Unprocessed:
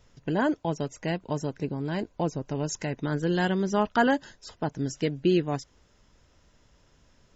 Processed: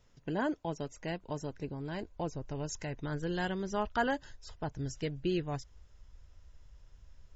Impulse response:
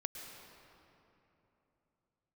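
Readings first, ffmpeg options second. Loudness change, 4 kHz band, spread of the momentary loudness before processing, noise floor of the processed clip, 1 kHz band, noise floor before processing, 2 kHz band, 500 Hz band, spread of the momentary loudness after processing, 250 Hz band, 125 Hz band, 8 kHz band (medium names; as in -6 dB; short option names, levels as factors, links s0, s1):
-8.5 dB, -7.0 dB, 8 LU, -61 dBFS, -7.5 dB, -63 dBFS, -7.0 dB, -8.5 dB, 8 LU, -9.5 dB, -7.5 dB, no reading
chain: -af "asubboost=boost=9:cutoff=74,volume=0.447"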